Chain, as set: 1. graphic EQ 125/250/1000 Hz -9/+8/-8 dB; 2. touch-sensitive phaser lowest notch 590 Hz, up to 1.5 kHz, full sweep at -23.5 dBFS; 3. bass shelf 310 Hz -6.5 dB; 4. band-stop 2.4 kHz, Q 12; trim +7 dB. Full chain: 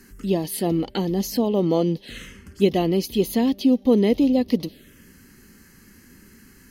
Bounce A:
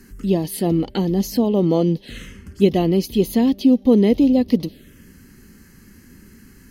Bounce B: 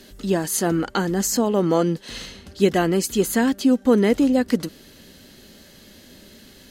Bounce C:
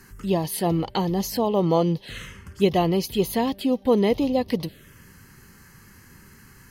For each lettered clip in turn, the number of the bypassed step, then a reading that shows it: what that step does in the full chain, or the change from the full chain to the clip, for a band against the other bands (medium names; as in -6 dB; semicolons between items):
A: 3, 125 Hz band +4.5 dB; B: 2, 8 kHz band +8.5 dB; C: 1, 1 kHz band +5.0 dB